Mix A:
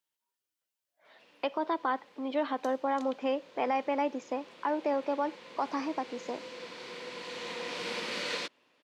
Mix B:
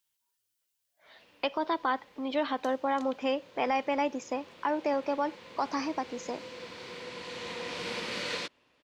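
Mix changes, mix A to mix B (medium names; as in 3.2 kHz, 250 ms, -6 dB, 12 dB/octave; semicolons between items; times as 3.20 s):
speech: add treble shelf 2.5 kHz +9.5 dB; master: remove high-pass 190 Hz 12 dB/octave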